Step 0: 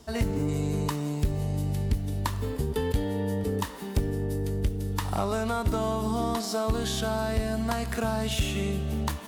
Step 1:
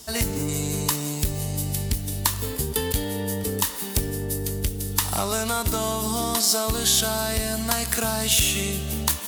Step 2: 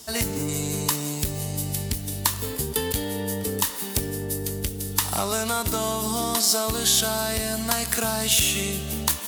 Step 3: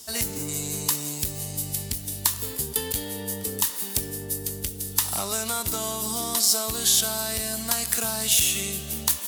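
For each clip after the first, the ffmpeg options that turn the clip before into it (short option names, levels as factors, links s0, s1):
-af "crystalizer=i=6:c=0"
-af "highpass=f=89:p=1"
-af "highshelf=f=3400:g=8,volume=0.501"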